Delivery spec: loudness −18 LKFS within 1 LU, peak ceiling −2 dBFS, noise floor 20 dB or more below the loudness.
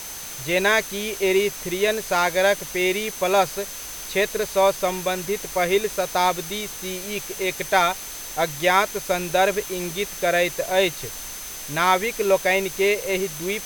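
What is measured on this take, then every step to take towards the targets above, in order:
interfering tone 6,200 Hz; level of the tone −38 dBFS; background noise floor −35 dBFS; target noise floor −43 dBFS; integrated loudness −22.5 LKFS; sample peak −4.0 dBFS; target loudness −18.0 LKFS
→ notch filter 6,200 Hz, Q 30
broadband denoise 8 dB, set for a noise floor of −35 dBFS
level +4.5 dB
brickwall limiter −2 dBFS

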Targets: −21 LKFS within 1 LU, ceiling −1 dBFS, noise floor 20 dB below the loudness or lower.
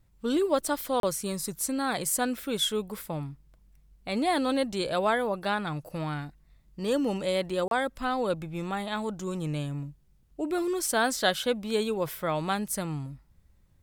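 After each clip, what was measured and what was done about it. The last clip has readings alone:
number of dropouts 2; longest dropout 32 ms; integrated loudness −29.5 LKFS; sample peak −12.0 dBFS; target loudness −21.0 LKFS
→ repair the gap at 0:01.00/0:07.68, 32 ms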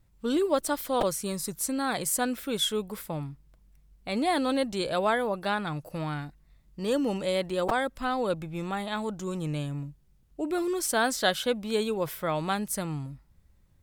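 number of dropouts 0; integrated loudness −29.5 LKFS; sample peak −12.0 dBFS; target loudness −21.0 LKFS
→ level +8.5 dB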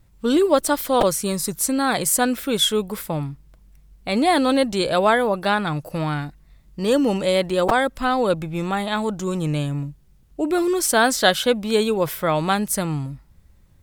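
integrated loudness −21.0 LKFS; sample peak −3.5 dBFS; background noise floor −54 dBFS

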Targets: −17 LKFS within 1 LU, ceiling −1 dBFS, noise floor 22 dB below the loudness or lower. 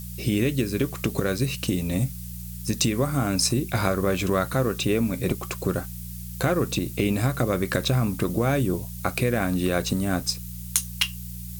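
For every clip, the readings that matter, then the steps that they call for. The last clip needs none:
mains hum 60 Hz; hum harmonics up to 180 Hz; level of the hum −34 dBFS; background noise floor −36 dBFS; target noise floor −47 dBFS; integrated loudness −25.0 LKFS; sample peak −6.0 dBFS; target loudness −17.0 LKFS
→ hum removal 60 Hz, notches 3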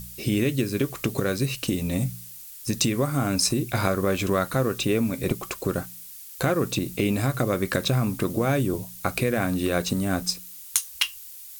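mains hum none found; background noise floor −42 dBFS; target noise floor −48 dBFS
→ noise reduction from a noise print 6 dB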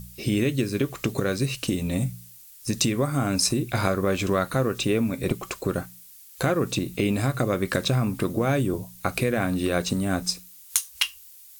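background noise floor −48 dBFS; integrated loudness −25.5 LKFS; sample peak −6.0 dBFS; target loudness −17.0 LKFS
→ level +8.5 dB
brickwall limiter −1 dBFS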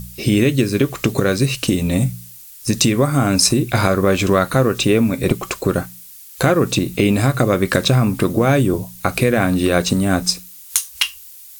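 integrated loudness −17.5 LKFS; sample peak −1.0 dBFS; background noise floor −40 dBFS

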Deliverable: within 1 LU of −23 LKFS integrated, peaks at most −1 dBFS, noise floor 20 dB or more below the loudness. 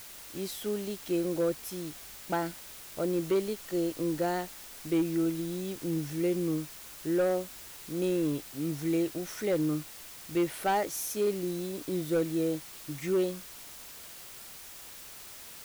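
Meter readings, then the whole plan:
share of clipped samples 0.9%; peaks flattened at −22.0 dBFS; background noise floor −47 dBFS; target noise floor −52 dBFS; integrated loudness −32.0 LKFS; sample peak −22.0 dBFS; target loudness −23.0 LKFS
→ clipped peaks rebuilt −22 dBFS
broadband denoise 6 dB, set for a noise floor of −47 dBFS
level +9 dB

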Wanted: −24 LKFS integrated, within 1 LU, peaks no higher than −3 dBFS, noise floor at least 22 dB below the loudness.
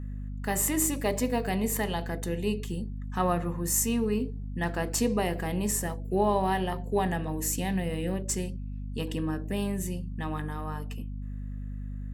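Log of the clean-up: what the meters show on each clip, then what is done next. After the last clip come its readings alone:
mains hum 50 Hz; hum harmonics up to 250 Hz; level of the hum −33 dBFS; integrated loudness −30.0 LKFS; sample peak −13.0 dBFS; target loudness −24.0 LKFS
→ hum removal 50 Hz, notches 5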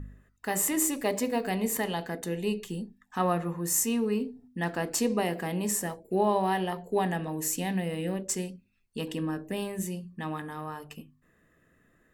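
mains hum none found; integrated loudness −30.5 LKFS; sample peak −13.0 dBFS; target loudness −24.0 LKFS
→ level +6.5 dB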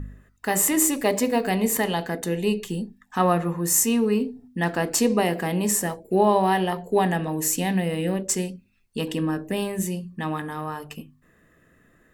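integrated loudness −24.0 LKFS; sample peak −6.5 dBFS; background noise floor −61 dBFS

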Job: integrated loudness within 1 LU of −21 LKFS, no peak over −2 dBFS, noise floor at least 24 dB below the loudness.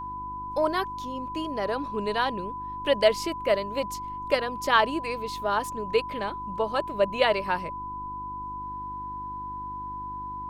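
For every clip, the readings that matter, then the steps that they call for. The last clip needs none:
mains hum 50 Hz; hum harmonics up to 350 Hz; level of the hum −43 dBFS; interfering tone 1,000 Hz; level of the tone −33 dBFS; integrated loudness −28.5 LKFS; sample peak −7.0 dBFS; target loudness −21.0 LKFS
→ hum removal 50 Hz, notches 7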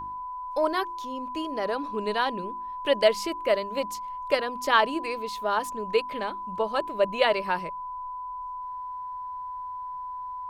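mains hum none found; interfering tone 1,000 Hz; level of the tone −33 dBFS
→ notch filter 1,000 Hz, Q 30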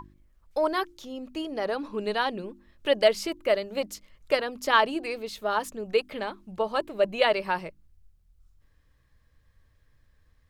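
interfering tone none found; integrated loudness −28.0 LKFS; sample peak −7.0 dBFS; target loudness −21.0 LKFS
→ level +7 dB
brickwall limiter −2 dBFS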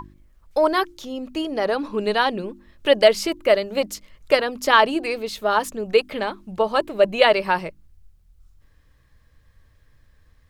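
integrated loudness −21.0 LKFS; sample peak −2.0 dBFS; background noise floor −58 dBFS

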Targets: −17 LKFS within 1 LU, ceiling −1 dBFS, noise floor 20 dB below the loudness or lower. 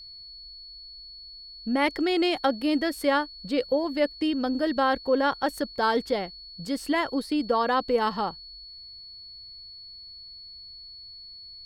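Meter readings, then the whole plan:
interfering tone 4,400 Hz; level of the tone −42 dBFS; integrated loudness −26.0 LKFS; sample peak −11.0 dBFS; target loudness −17.0 LKFS
→ notch filter 4,400 Hz, Q 30
level +9 dB

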